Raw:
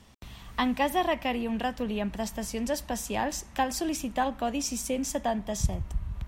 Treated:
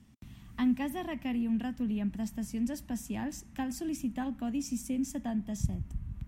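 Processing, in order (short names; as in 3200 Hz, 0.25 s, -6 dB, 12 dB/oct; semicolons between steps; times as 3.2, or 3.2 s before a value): ten-band EQ 125 Hz +7 dB, 250 Hz +10 dB, 500 Hz -9 dB, 1000 Hz -5 dB, 4000 Hz -6 dB; gain -8 dB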